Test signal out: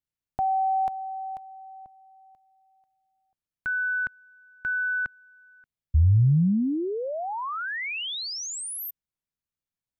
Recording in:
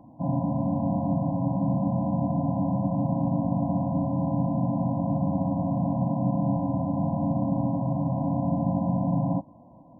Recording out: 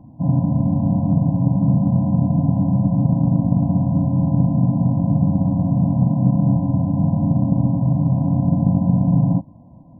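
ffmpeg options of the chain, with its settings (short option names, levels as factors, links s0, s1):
-af "bass=f=250:g=14,treble=f=4000:g=-3,aeval=exprs='0.668*(cos(1*acos(clip(val(0)/0.668,-1,1)))-cos(1*PI/2))+0.0422*(cos(3*acos(clip(val(0)/0.668,-1,1)))-cos(3*PI/2))':c=same"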